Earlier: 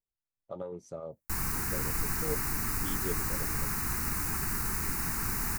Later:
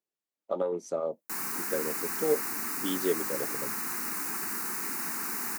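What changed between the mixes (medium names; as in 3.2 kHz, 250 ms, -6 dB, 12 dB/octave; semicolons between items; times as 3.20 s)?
speech +10.0 dB; master: add high-pass 230 Hz 24 dB/octave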